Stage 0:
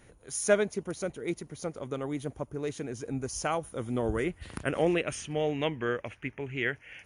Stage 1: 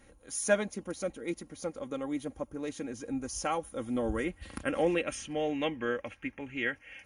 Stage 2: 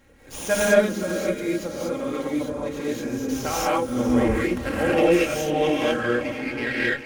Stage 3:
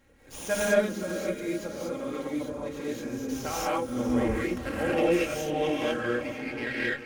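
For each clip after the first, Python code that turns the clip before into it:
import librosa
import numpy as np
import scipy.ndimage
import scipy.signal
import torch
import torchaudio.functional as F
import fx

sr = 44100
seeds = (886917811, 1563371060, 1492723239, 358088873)

y1 = x + 0.64 * np.pad(x, (int(3.7 * sr / 1000.0), 0))[:len(x)]
y1 = y1 * 10.0 ** (-3.0 / 20.0)
y2 = fx.echo_diffused(y1, sr, ms=487, feedback_pct=40, wet_db=-13.0)
y2 = fx.rev_gated(y2, sr, seeds[0], gate_ms=270, shape='rising', drr_db=-8.0)
y2 = fx.running_max(y2, sr, window=3)
y2 = y2 * 10.0 ** (2.0 / 20.0)
y3 = y2 + 10.0 ** (-20.5 / 20.0) * np.pad(y2, (int(927 * sr / 1000.0), 0))[:len(y2)]
y3 = y3 * 10.0 ** (-6.0 / 20.0)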